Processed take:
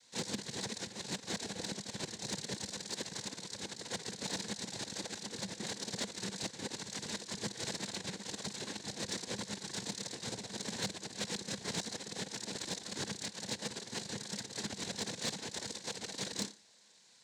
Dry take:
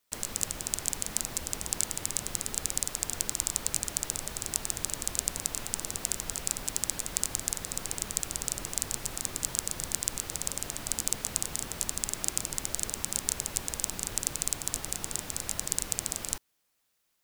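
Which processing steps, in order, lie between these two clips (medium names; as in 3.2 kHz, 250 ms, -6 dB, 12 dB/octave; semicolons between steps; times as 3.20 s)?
peaking EQ 1.7 kHz +8.5 dB 0.28 oct; flutter echo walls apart 5 m, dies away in 0.29 s; peak limiter -8.5 dBFS, peak gain reduction 6.5 dB; compressor with a negative ratio -41 dBFS, ratio -0.5; AM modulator 240 Hz, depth 80%; noise-vocoded speech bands 6; graphic EQ with 31 bands 200 Hz +9 dB, 500 Hz +6 dB, 1.25 kHz -11 dB, 4 kHz +5 dB; saturation -32.5 dBFS, distortion -22 dB; trim +6.5 dB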